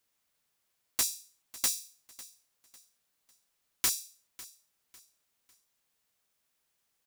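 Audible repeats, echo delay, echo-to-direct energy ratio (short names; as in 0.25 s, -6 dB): 2, 0.55 s, -18.5 dB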